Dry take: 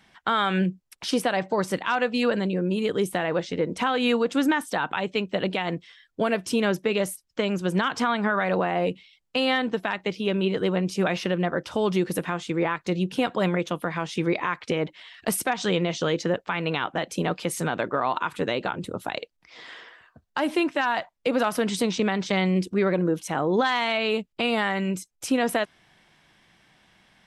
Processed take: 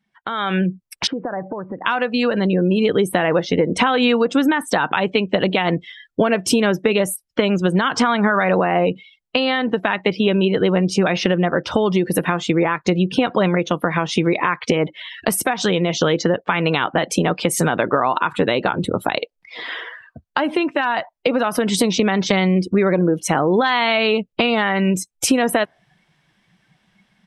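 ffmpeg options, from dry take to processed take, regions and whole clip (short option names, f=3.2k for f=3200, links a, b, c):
-filter_complex "[0:a]asettb=1/sr,asplit=3[a][b][c];[a]atrim=end=1.074[d];[b]atrim=start=1.07:end=1.86,asetpts=PTS-STARTPTS,afade=t=in:d=0.004:c=qsin,afade=t=out:st=0.786:d=0.004:c=qsin,lowpass=f=1.6k:w=0.5412,lowpass=f=1.6k:w=1.3066,acompressor=threshold=-37dB:ratio=10:attack=3.2:release=140:knee=1:detection=peak[e];[c]atrim=start=1.856[f];[d][e]acrossfade=d=0.004:c1=hsin:c2=qsin[g];[g][f]acrossfade=d=0.004:c1=qsin:c2=hsin,acompressor=threshold=-29dB:ratio=6,afftdn=nr=20:nf=-48,dynaudnorm=f=270:g=3:m=16dB"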